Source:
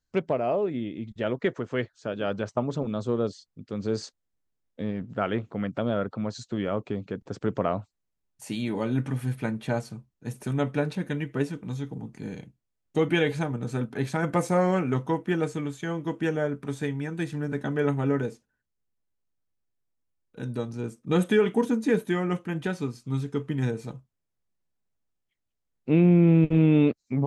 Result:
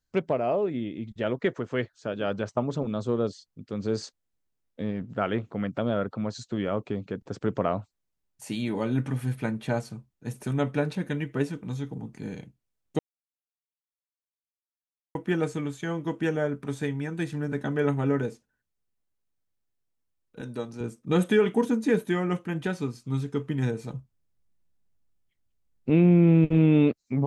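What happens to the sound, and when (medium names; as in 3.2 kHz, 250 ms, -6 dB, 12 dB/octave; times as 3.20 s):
12.99–15.15 s: mute
20.41–20.81 s: high-pass 270 Hz 6 dB/octave
23.93–25.90 s: bass shelf 200 Hz +10.5 dB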